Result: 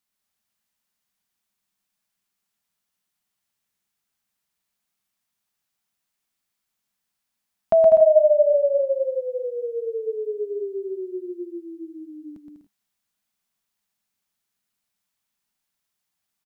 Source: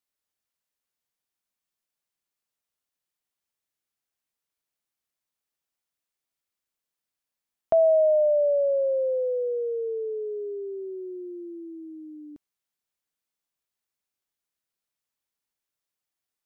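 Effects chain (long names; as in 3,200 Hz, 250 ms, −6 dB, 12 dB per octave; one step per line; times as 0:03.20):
thirty-one-band graphic EQ 200 Hz +8 dB, 315 Hz −5 dB, 500 Hz −9 dB
on a send: bouncing-ball delay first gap 120 ms, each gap 0.65×, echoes 5
on the sum: level +5 dB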